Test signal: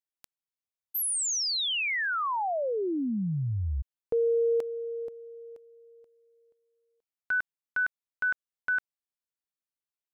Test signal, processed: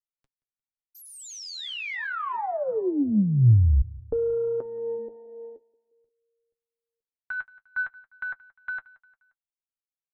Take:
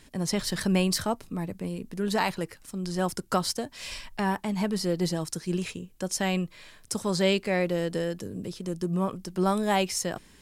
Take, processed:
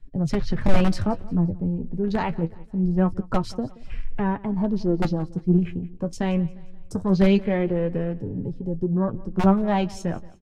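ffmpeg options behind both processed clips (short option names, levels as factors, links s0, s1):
-filter_complex "[0:a]afwtdn=0.0112,acrossover=split=460|930[s0][s1][s2];[s0]aeval=exprs='(mod(10.6*val(0)+1,2)-1)/10.6':c=same[s3];[s3][s1][s2]amix=inputs=3:normalize=0,flanger=delay=7.1:depth=5.6:regen=42:speed=0.24:shape=sinusoidal,aemphasis=mode=reproduction:type=riaa,aeval=exprs='0.422*(cos(1*acos(clip(val(0)/0.422,-1,1)))-cos(1*PI/2))+0.00531*(cos(7*acos(clip(val(0)/0.422,-1,1)))-cos(7*PI/2))':c=same,asplit=2[s4][s5];[s5]aecho=0:1:176|352|528:0.0841|0.0387|0.0178[s6];[s4][s6]amix=inputs=2:normalize=0,volume=1.58"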